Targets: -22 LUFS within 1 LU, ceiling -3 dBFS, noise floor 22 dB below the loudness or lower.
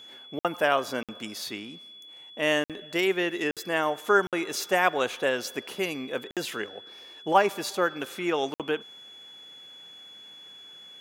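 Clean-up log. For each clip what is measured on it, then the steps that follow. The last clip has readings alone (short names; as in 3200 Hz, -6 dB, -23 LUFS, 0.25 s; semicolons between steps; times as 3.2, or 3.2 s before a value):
dropouts 7; longest dropout 57 ms; steady tone 3400 Hz; tone level -45 dBFS; loudness -27.5 LUFS; peak -6.5 dBFS; loudness target -22.0 LUFS
-> interpolate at 0.39/1.03/2.64/3.51/4.27/6.31/8.54, 57 ms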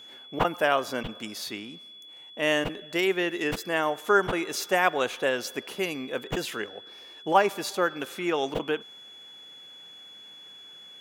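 dropouts 0; steady tone 3400 Hz; tone level -45 dBFS
-> notch 3400 Hz, Q 30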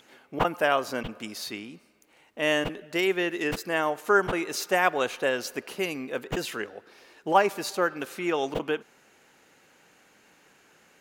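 steady tone none; loudness -27.5 LUFS; peak -6.5 dBFS; loudness target -22.0 LUFS
-> gain +5.5 dB; limiter -3 dBFS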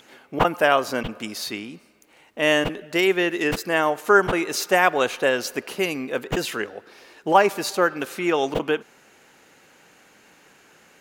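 loudness -22.0 LUFS; peak -3.0 dBFS; noise floor -55 dBFS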